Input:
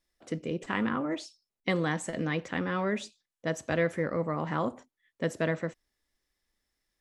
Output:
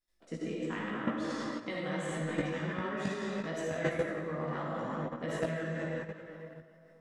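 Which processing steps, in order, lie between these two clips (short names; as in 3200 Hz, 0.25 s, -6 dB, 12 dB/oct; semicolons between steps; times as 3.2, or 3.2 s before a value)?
digital reverb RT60 2.6 s, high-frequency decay 0.8×, pre-delay 15 ms, DRR -5.5 dB; level quantiser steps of 11 dB; chorus voices 4, 0.7 Hz, delay 17 ms, depth 4.4 ms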